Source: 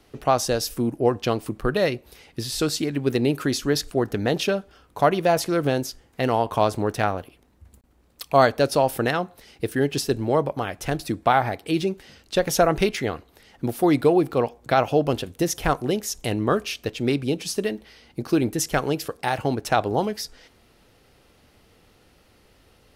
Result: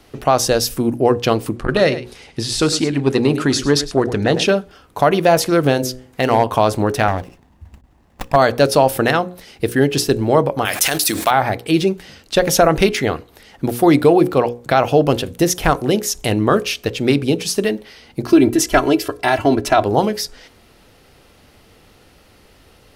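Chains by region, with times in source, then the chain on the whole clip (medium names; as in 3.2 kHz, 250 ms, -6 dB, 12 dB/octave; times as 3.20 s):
1.56–4.47 s: low-pass 9.9 kHz 24 dB/octave + delay 105 ms -14 dB + transformer saturation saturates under 310 Hz
5.71–6.58 s: de-hum 127.4 Hz, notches 5 + overload inside the chain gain 13 dB
7.08–8.36 s: comb 1.1 ms, depth 41% + sliding maximum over 9 samples
10.65–11.31 s: tilt EQ +4.5 dB/octave + companded quantiser 6-bit + decay stretcher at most 59 dB/s
18.26–19.84 s: treble shelf 4.8 kHz -5 dB + comb 3 ms, depth 85%
whole clip: hum notches 60/120/180/240/300/360/420/480/540 Hz; loudness maximiser +9 dB; trim -1 dB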